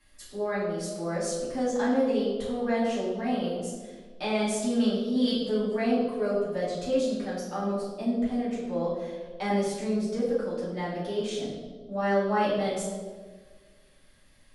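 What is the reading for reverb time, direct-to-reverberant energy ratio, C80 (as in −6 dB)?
1.5 s, −10.0 dB, 3.5 dB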